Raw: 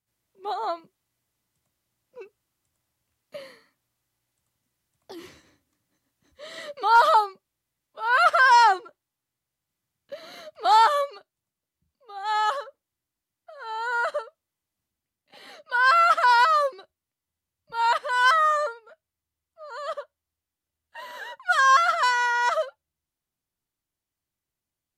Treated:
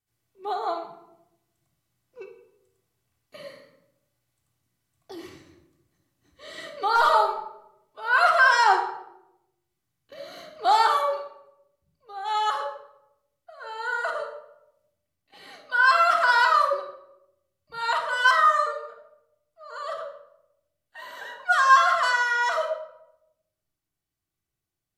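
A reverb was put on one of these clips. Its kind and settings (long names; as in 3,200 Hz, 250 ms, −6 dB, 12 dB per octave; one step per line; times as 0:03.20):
rectangular room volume 2,300 cubic metres, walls furnished, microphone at 3.5 metres
level −3 dB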